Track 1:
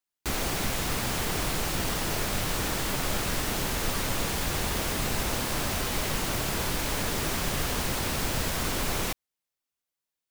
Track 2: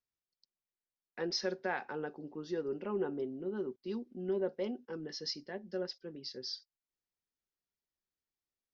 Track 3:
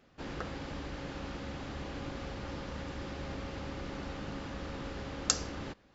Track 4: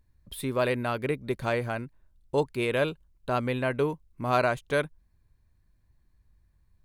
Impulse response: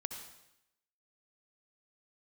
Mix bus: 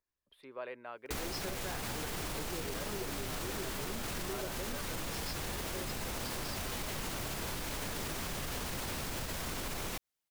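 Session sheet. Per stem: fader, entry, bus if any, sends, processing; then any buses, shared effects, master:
0.0 dB, 0.85 s, no send, limiter -23.5 dBFS, peak gain reduction 8 dB
-2.0 dB, 0.00 s, no send, dry
-13.5 dB, 0.85 s, no send, vocal tract filter u; bit-crush 7-bit
-14.5 dB, 0.00 s, no send, three-band isolator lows -21 dB, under 340 Hz, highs -21 dB, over 3200 Hz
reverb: off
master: compressor, threshold -35 dBFS, peak gain reduction 8.5 dB

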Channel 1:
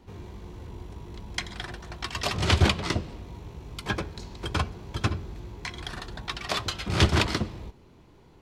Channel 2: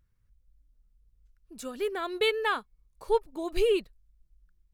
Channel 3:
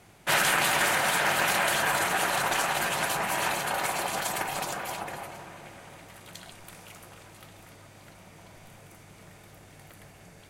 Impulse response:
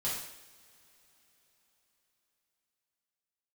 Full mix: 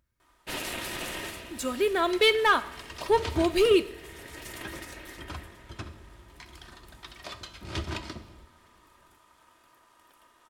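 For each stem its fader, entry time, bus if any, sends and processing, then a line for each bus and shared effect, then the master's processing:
-14.0 dB, 0.75 s, send -13.5 dB, dry
+2.5 dB, 0.00 s, send -16 dB, HPF 160 Hz 6 dB/oct; sample leveller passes 1
-9.0 dB, 0.20 s, send -19 dB, ring modulator 1100 Hz; auto duck -14 dB, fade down 0.25 s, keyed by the second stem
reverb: on, pre-delay 3 ms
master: comb 3.2 ms, depth 38%

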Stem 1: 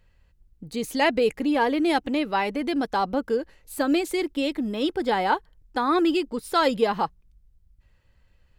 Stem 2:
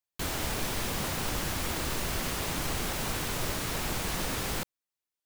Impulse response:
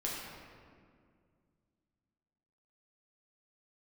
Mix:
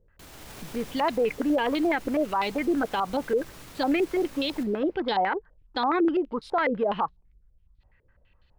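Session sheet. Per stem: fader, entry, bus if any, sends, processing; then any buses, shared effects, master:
-2.5 dB, 0.00 s, no send, stepped low-pass 12 Hz 440–3900 Hz
-10.5 dB, 0.00 s, send -17.5 dB, limiter -28 dBFS, peak gain reduction 9 dB; AGC gain up to 10.5 dB; auto duck -13 dB, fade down 1.35 s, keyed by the first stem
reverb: on, RT60 2.1 s, pre-delay 6 ms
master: limiter -17 dBFS, peak gain reduction 10.5 dB

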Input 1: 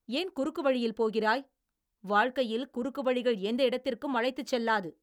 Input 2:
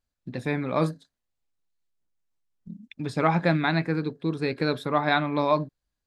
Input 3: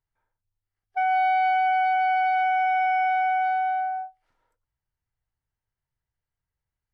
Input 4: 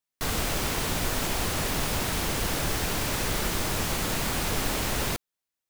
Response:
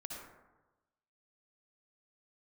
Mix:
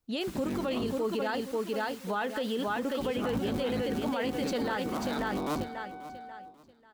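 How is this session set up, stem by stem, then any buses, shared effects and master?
+2.5 dB, 0.00 s, no send, echo send -5 dB, dry
-7.5 dB, 0.00 s, no send, echo send -19 dB, cycle switcher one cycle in 3, inverted; graphic EQ 250/500/2000 Hz +9/-5/-7 dB
-15.0 dB, 2.45 s, no send, no echo send, compressor, threshold -29 dBFS, peak gain reduction 8 dB
-18.0 dB, 0.00 s, no send, no echo send, HPF 1100 Hz; reverb removal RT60 0.51 s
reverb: off
echo: feedback echo 0.539 s, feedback 31%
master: limiter -23 dBFS, peak gain reduction 12 dB

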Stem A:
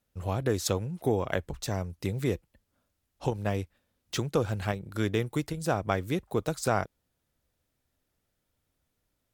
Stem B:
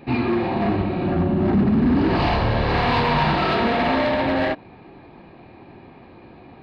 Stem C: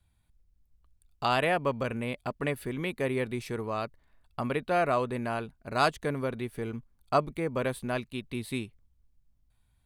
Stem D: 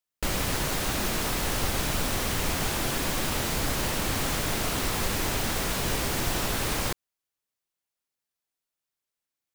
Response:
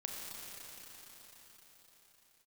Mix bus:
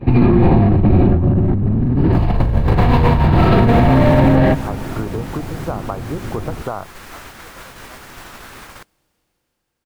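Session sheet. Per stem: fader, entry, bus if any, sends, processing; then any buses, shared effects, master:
+1.5 dB, 0.00 s, bus A, no send, steep low-pass 1200 Hz
+2.5 dB, 0.00 s, no bus, send -17.5 dB, octaver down 1 oct, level 0 dB; tilt -3 dB/oct
-18.0 dB, 0.00 s, bus A, no send, compressor, threshold -31 dBFS, peak gain reduction 11.5 dB
-16.5 dB, 1.90 s, bus A, send -9.5 dB, dry
bus A: 0.0 dB, bell 1400 Hz +10.5 dB 1.8 oct; compressor 6:1, threshold -25 dBFS, peak gain reduction 10 dB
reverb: on, pre-delay 29 ms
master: gate -39 dBFS, range -14 dB; negative-ratio compressor -11 dBFS, ratio -1; limiter -3 dBFS, peak gain reduction 5.5 dB

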